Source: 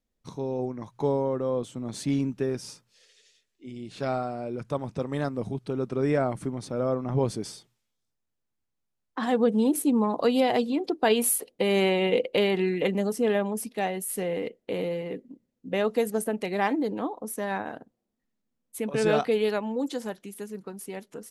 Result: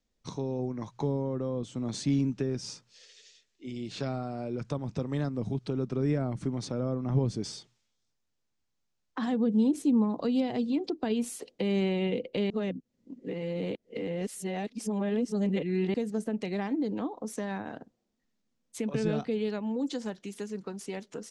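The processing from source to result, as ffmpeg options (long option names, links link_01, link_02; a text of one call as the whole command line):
ffmpeg -i in.wav -filter_complex "[0:a]asplit=3[link_01][link_02][link_03];[link_01]atrim=end=12.502[link_04];[link_02]atrim=start=12.498:end=15.942,asetpts=PTS-STARTPTS,areverse[link_05];[link_03]atrim=start=15.938[link_06];[link_04][link_05]acrossfade=duration=0.004:curve1=hsin:curve2=hsin[link_07];[link_07][link_06]acrossfade=duration=0.004:curve1=hsin:curve2=hsin,lowpass=frequency=6700:width=0.5412,lowpass=frequency=6700:width=1.3066,aemphasis=mode=production:type=cd,acrossover=split=290[link_08][link_09];[link_09]acompressor=threshold=-38dB:ratio=6[link_10];[link_08][link_10]amix=inputs=2:normalize=0,volume=2dB" out.wav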